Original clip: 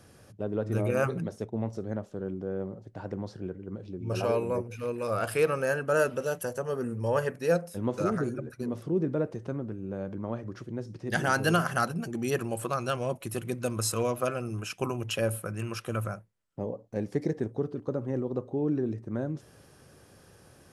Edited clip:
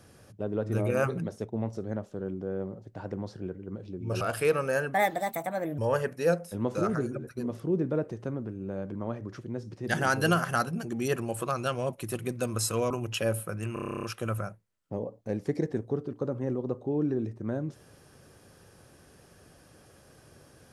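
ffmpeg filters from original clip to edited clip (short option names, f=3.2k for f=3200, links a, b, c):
-filter_complex "[0:a]asplit=15[a][b][c][d][e][f][g][h][i][j][k][l][m][n][o];[a]atrim=end=4.212[p];[b]atrim=start=5.148:end=5.884[q];[c]atrim=start=5.88:end=7.01,asetpts=PTS-STARTPTS,asetrate=59094,aresample=44100[r];[d]atrim=start=7.006:end=14.132[s];[e]atrim=start=14.868:end=15.732[t];[f]atrim=start=15.698:end=15.732[u];[g]atrim=start=15.698:end=15.732[v];[h]atrim=start=15.698:end=15.732[w];[i]atrim=start=15.698:end=15.732[x];[j]atrim=start=15.698:end=15.732[y];[k]atrim=start=15.698:end=15.732[z];[l]atrim=start=15.698:end=15.732[aa];[m]atrim=start=15.698:end=15.732[ab];[n]atrim=start=15.698:end=15.732[ac];[o]atrim=start=15.698[ad];[p][q]acrossfade=d=0.004:c1=hsin:c2=hsin[ae];[ae][r]acrossfade=d=0.004:c1=hsin:c2=hsin[af];[af][s]acrossfade=d=0.004:c1=hsin:c2=hsin[ag];[ag][t]acrossfade=d=0.004:c1=hsin:c2=hsin[ah];[ah][u]acrossfade=d=0.004:c1=hsin:c2=hsin[ai];[ai][v]acrossfade=d=0.004:c1=hsin:c2=hsin[aj];[aj][w]acrossfade=d=0.004:c1=hsin:c2=hsin[ak];[ak][x]acrossfade=d=0.004:c1=hsin:c2=hsin[al];[al][y]acrossfade=d=0.004:c1=hsin:c2=hsin[am];[am][z]acrossfade=d=0.004:c1=hsin:c2=hsin[an];[an][aa]acrossfade=d=0.004:c1=hsin:c2=hsin[ao];[ao][ab]acrossfade=d=0.004:c1=hsin:c2=hsin[ap];[ap][ac]acrossfade=d=0.004:c1=hsin:c2=hsin[aq];[aq][ad]acrossfade=d=0.004:c1=hsin:c2=hsin"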